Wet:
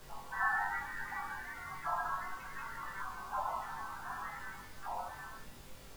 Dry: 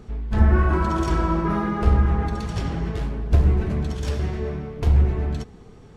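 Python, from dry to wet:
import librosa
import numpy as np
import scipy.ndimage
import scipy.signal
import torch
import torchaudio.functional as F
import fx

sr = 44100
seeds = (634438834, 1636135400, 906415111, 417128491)

y = fx.fade_out_tail(x, sr, length_s=1.59)
y = scipy.signal.sosfilt(scipy.signal.butter(2, 1400.0, 'lowpass', fs=sr, output='sos'), y)
y = fx.spec_gate(y, sr, threshold_db=-30, keep='weak')
y = scipy.signal.sosfilt(scipy.signal.cheby1(3, 1.0, 760.0, 'highpass', fs=sr, output='sos'), y)
y = fx.spec_topn(y, sr, count=16)
y = fx.dmg_noise_colour(y, sr, seeds[0], colour='pink', level_db=-64.0)
y = fx.doubler(y, sr, ms=21.0, db=-4.0)
y = fx.room_shoebox(y, sr, seeds[1], volume_m3=140.0, walls='furnished', distance_m=1.2)
y = y * 10.0 ** (6.0 / 20.0)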